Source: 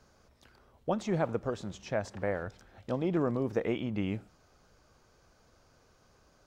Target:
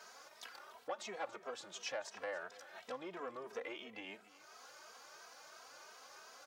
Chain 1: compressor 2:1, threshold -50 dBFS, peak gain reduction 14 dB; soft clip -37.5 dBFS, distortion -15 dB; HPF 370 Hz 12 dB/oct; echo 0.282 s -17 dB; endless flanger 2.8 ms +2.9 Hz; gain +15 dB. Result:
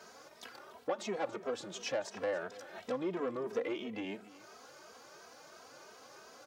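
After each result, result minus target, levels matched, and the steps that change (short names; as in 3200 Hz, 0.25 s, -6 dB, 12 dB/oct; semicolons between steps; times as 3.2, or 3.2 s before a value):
1000 Hz band -5.0 dB; compressor: peak gain reduction -3 dB
change: HPF 770 Hz 12 dB/oct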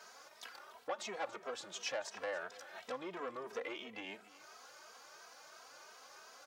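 compressor: peak gain reduction -3 dB
change: compressor 2:1, threshold -56.5 dBFS, peak gain reduction 17 dB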